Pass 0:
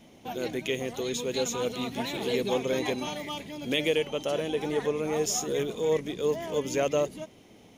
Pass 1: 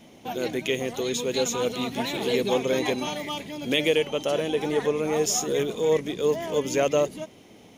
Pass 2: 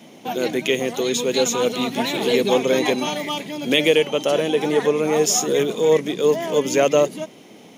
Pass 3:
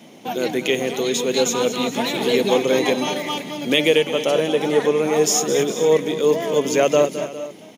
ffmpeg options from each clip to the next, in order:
-af "lowshelf=f=72:g=-6.5,volume=4dB"
-af "highpass=f=140:w=0.5412,highpass=f=140:w=1.3066,volume=6dB"
-af "aecho=1:1:215|408|459:0.237|0.141|0.119"

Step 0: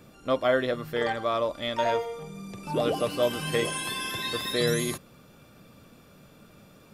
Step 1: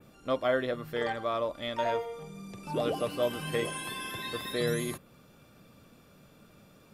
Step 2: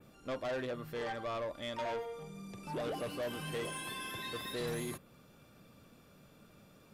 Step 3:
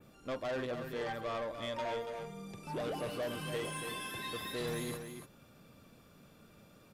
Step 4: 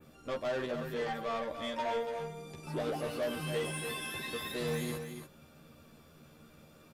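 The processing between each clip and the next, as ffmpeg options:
-af "adynamicequalizer=threshold=0.00355:dfrequency=5700:dqfactor=0.94:tfrequency=5700:tqfactor=0.94:attack=5:release=100:ratio=0.375:range=3.5:mode=cutabove:tftype=bell,volume=-4dB"
-af "asoftclip=type=tanh:threshold=-30.5dB,volume=-3dB"
-af "aecho=1:1:284:0.398"
-filter_complex "[0:a]asplit=2[a][b];[b]adelay=13,volume=-2dB[c];[a][c]amix=inputs=2:normalize=0"

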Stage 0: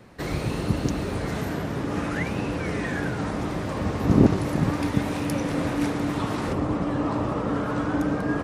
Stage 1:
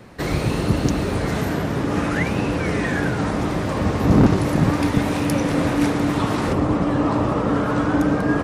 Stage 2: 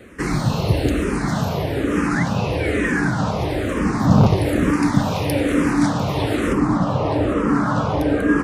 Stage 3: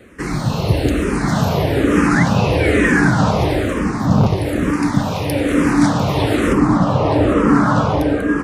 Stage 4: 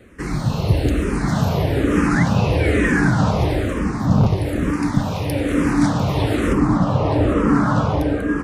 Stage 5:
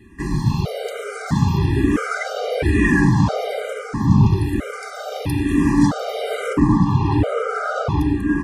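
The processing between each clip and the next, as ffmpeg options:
-af "volume=14.5dB,asoftclip=hard,volume=-14.5dB,volume=6dB"
-filter_complex "[0:a]asplit=2[a][b];[b]afreqshift=-1.1[c];[a][c]amix=inputs=2:normalize=1,volume=4dB"
-af "dynaudnorm=f=110:g=9:m=11.5dB,volume=-1dB"
-af "lowshelf=f=120:g=7.5,volume=-4.5dB"
-af "afftfilt=real='re*gt(sin(2*PI*0.76*pts/sr)*(1-2*mod(floor(b*sr/1024/400),2)),0)':imag='im*gt(sin(2*PI*0.76*pts/sr)*(1-2*mod(floor(b*sr/1024/400),2)),0)':win_size=1024:overlap=0.75,volume=2dB"

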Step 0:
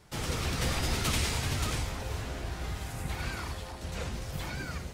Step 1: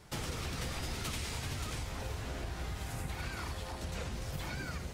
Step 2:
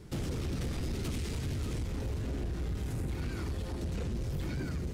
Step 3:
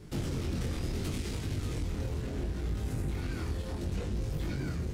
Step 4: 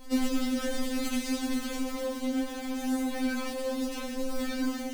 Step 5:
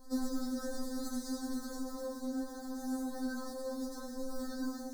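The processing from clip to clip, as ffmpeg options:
-af "acompressor=threshold=-37dB:ratio=6,volume=1.5dB"
-af "lowshelf=f=510:t=q:w=1.5:g=10,asoftclip=type=tanh:threshold=-28dB,volume=-1.5dB"
-af "flanger=delay=19:depth=6.1:speed=0.7,volume=4dB"
-filter_complex "[0:a]asplit=2[a][b];[b]acrusher=bits=2:mode=log:mix=0:aa=0.000001,volume=-4.5dB[c];[a][c]amix=inputs=2:normalize=0,afftfilt=real='re*3.46*eq(mod(b,12),0)':imag='im*3.46*eq(mod(b,12),0)':win_size=2048:overlap=0.75,volume=5dB"
-af "asuperstop=centerf=2600:order=8:qfactor=1.1,volume=-7.5dB"

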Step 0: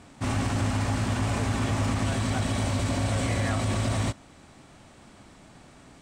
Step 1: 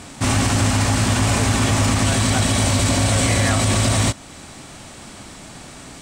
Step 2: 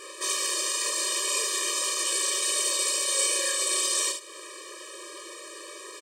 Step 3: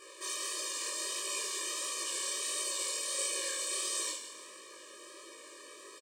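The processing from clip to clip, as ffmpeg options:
-filter_complex "[0:a]highshelf=f=3.3k:g=9.5,asplit=2[a][b];[b]alimiter=level_in=1dB:limit=-24dB:level=0:latency=1:release=257,volume=-1dB,volume=-0.5dB[c];[a][c]amix=inputs=2:normalize=0,volume=5.5dB"
-filter_complex "[0:a]acrossover=split=140|3000[a][b][c];[b]acompressor=threshold=-31dB:ratio=6[d];[a][d][c]amix=inputs=3:normalize=0,asplit=2[e][f];[f]aecho=0:1:31|73:0.531|0.447[g];[e][g]amix=inputs=2:normalize=0,afftfilt=real='re*eq(mod(floor(b*sr/1024/320),2),1)':imag='im*eq(mod(floor(b*sr/1024/320),2),1)':win_size=1024:overlap=0.75"
-filter_complex "[0:a]acrusher=bits=7:mode=log:mix=0:aa=0.000001,asplit=6[a][b][c][d][e][f];[b]adelay=165,afreqshift=-38,volume=-11dB[g];[c]adelay=330,afreqshift=-76,volume=-17.6dB[h];[d]adelay=495,afreqshift=-114,volume=-24.1dB[i];[e]adelay=660,afreqshift=-152,volume=-30.7dB[j];[f]adelay=825,afreqshift=-190,volume=-37.2dB[k];[a][g][h][i][j][k]amix=inputs=6:normalize=0,flanger=delay=17.5:depth=7.2:speed=1.5,volume=-6.5dB"

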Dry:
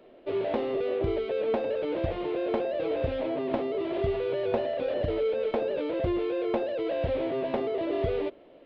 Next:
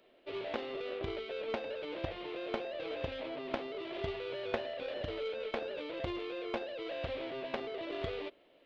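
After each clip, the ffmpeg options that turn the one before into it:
-af "aeval=exprs='0.2*(cos(1*acos(clip(val(0)/0.2,-1,1)))-cos(1*PI/2))+0.00501*(cos(2*acos(clip(val(0)/0.2,-1,1)))-cos(2*PI/2))+0.0447*(cos(3*acos(clip(val(0)/0.2,-1,1)))-cos(3*PI/2))+0.00251*(cos(5*acos(clip(val(0)/0.2,-1,1)))-cos(5*PI/2))':c=same,tiltshelf=f=1.4k:g=-7.5,volume=1.5dB"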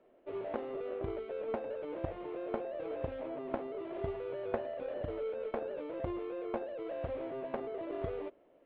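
-af "lowpass=1.2k,volume=1dB"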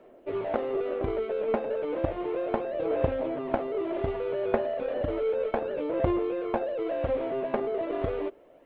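-af "aphaser=in_gain=1:out_gain=1:delay=4.9:decay=0.3:speed=0.33:type=sinusoidal,volume=9dB"

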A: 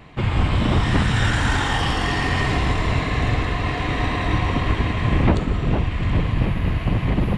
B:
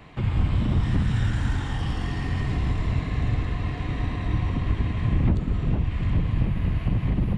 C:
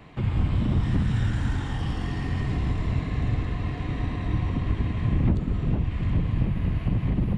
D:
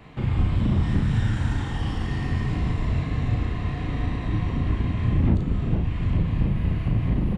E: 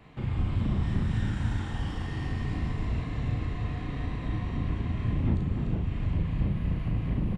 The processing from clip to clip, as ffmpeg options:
-filter_complex "[0:a]acrossover=split=260[a][b];[b]acompressor=threshold=-39dB:ratio=2.5[c];[a][c]amix=inputs=2:normalize=0,volume=-2.5dB"
-af "equalizer=f=250:w=0.45:g=3,volume=-2.5dB"
-filter_complex "[0:a]asplit=2[a][b];[b]adelay=36,volume=-3.5dB[c];[a][c]amix=inputs=2:normalize=0"
-af "aecho=1:1:295:0.473,volume=-6.5dB"

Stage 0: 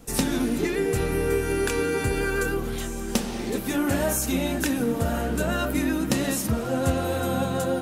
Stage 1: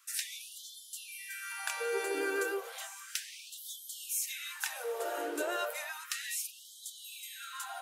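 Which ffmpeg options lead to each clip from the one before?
-af "afftfilt=real='re*gte(b*sr/1024,290*pow(3100/290,0.5+0.5*sin(2*PI*0.33*pts/sr)))':imag='im*gte(b*sr/1024,290*pow(3100/290,0.5+0.5*sin(2*PI*0.33*pts/sr)))':win_size=1024:overlap=0.75,volume=-6.5dB"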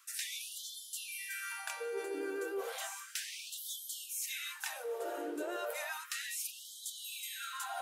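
-af "equalizer=f=220:t=o:w=2.1:g=12.5,areverse,acompressor=threshold=-40dB:ratio=6,areverse,volume=3dB"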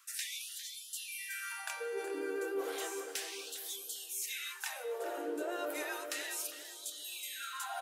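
-filter_complex "[0:a]asplit=2[a][b];[b]adelay=402,lowpass=f=990:p=1,volume=-5dB,asplit=2[c][d];[d]adelay=402,lowpass=f=990:p=1,volume=0.44,asplit=2[e][f];[f]adelay=402,lowpass=f=990:p=1,volume=0.44,asplit=2[g][h];[h]adelay=402,lowpass=f=990:p=1,volume=0.44,asplit=2[i][j];[j]adelay=402,lowpass=f=990:p=1,volume=0.44[k];[a][c][e][g][i][k]amix=inputs=6:normalize=0"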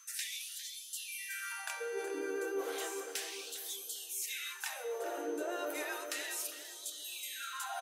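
-af "aecho=1:1:67|134|201|268|335:0.133|0.072|0.0389|0.021|0.0113,aeval=exprs='val(0)+0.00141*sin(2*PI*6200*n/s)':c=same"

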